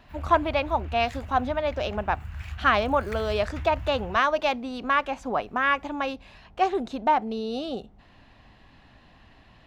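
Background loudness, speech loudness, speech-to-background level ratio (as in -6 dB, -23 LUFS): -38.5 LUFS, -26.0 LUFS, 12.5 dB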